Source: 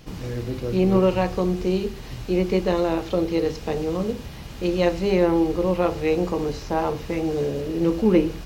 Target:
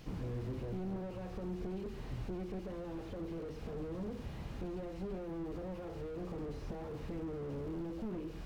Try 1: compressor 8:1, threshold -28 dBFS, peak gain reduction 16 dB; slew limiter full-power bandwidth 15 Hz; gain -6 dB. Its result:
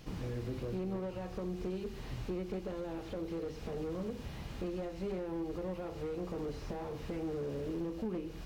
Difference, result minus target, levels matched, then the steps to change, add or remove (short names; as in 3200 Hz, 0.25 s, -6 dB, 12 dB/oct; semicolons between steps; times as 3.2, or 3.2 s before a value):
slew limiter: distortion -8 dB
change: slew limiter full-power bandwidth 7.5 Hz